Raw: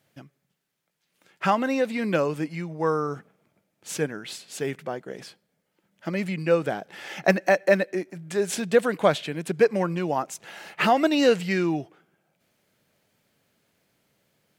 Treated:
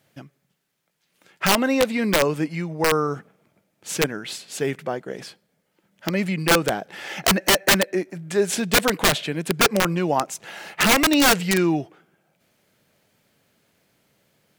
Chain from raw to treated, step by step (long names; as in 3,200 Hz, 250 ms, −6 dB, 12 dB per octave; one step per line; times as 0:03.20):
wrap-around overflow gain 14.5 dB
level +4.5 dB